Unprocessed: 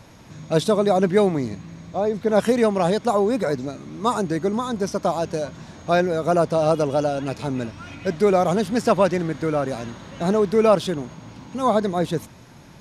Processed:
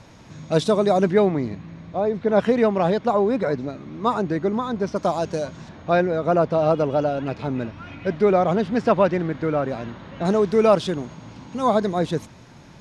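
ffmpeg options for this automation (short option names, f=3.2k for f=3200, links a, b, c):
-af "asetnsamples=n=441:p=0,asendcmd='1.13 lowpass f 3400;4.96 lowpass f 7900;5.69 lowpass f 3200;10.25 lowpass f 7400',lowpass=7.9k"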